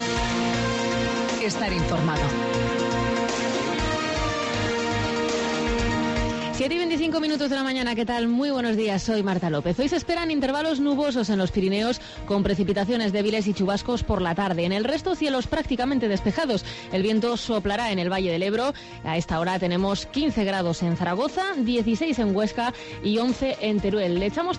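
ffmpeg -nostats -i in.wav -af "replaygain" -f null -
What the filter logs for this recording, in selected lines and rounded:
track_gain = +6.7 dB
track_peak = 0.176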